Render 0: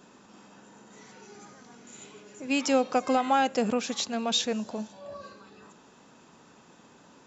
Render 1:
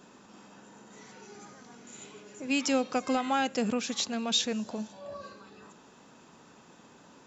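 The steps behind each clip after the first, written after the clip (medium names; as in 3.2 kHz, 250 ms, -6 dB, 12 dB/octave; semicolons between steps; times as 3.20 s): dynamic bell 700 Hz, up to -6 dB, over -38 dBFS, Q 0.76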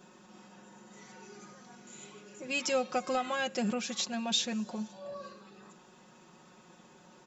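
comb 5.5 ms, depth 76%; trim -4 dB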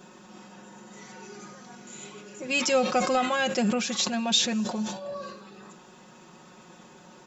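decay stretcher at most 72 dB/s; trim +6.5 dB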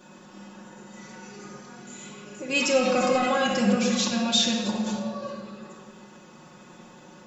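simulated room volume 1900 m³, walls mixed, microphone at 2.4 m; trim -2.5 dB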